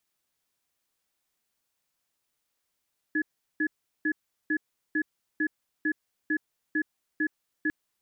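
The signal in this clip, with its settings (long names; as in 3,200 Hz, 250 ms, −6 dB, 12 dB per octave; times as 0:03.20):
tone pair in a cadence 309 Hz, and 1,700 Hz, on 0.07 s, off 0.38 s, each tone −26 dBFS 4.55 s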